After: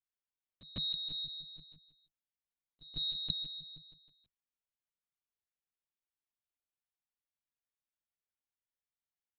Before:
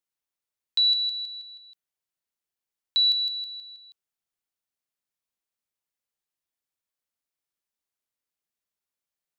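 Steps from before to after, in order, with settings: one diode to ground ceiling -24 dBFS; limiter -20.5 dBFS, peak gain reduction 3.5 dB; added harmonics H 7 -26 dB, 8 -14 dB, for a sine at -20.5 dBFS; on a send: echo 0.329 s -6.5 dB; on the sum: ring modulator 160 Hz; LPC vocoder at 8 kHz pitch kept; pre-echo 0.15 s -18 dB; gain -3.5 dB

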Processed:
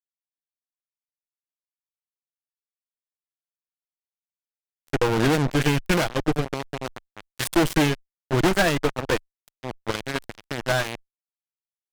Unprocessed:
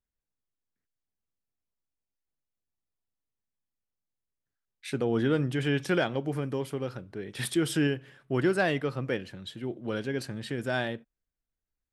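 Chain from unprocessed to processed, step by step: comb 6.2 ms, depth 34%; added harmonics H 2 -19 dB, 3 -11 dB, 7 -33 dB, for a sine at -12.5 dBFS; fuzz box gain 47 dB, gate -52 dBFS; tube stage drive 15 dB, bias 0.75; gain +4.5 dB

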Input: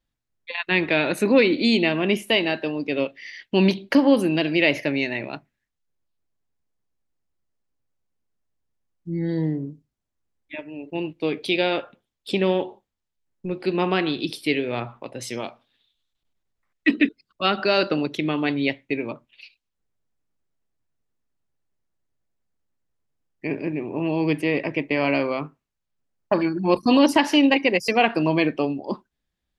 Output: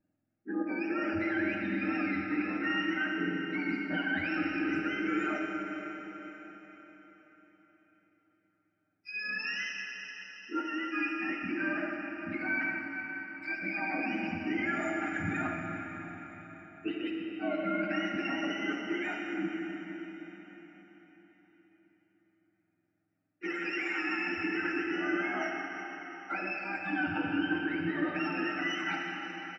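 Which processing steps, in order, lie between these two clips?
spectrum mirrored in octaves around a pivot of 920 Hz; fixed phaser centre 680 Hz, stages 8; reverse; compressor 10:1, threshold -37 dBFS, peak gain reduction 21.5 dB; reverse; limiter -34.5 dBFS, peak gain reduction 7.5 dB; polynomial smoothing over 25 samples; comb 6.5 ms, depth 73%; digital reverb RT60 4.6 s, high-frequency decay 0.95×, pre-delay 10 ms, DRR 0 dB; gain +7 dB

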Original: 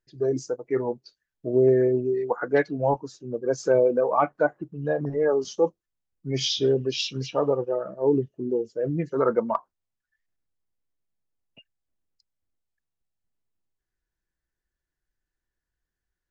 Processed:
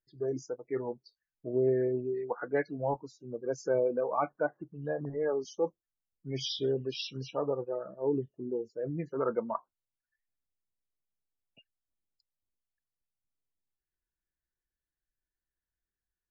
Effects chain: loudest bins only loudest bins 64; gain -8.5 dB

